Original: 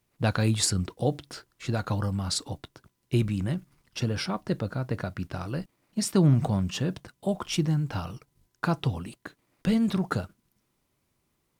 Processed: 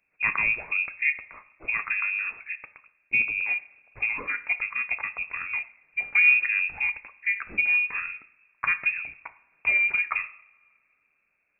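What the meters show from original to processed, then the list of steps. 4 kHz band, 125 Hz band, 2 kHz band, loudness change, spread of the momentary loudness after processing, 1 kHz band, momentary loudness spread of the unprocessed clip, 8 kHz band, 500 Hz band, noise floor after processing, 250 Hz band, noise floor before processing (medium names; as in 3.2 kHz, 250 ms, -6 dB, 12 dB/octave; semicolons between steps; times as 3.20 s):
under -10 dB, under -25 dB, +18.0 dB, +4.0 dB, 12 LU, -2.0 dB, 15 LU, under -40 dB, under -15 dB, -72 dBFS, under -25 dB, -75 dBFS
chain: two-slope reverb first 0.6 s, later 2.5 s, from -22 dB, DRR 11 dB; frequency inversion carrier 2.6 kHz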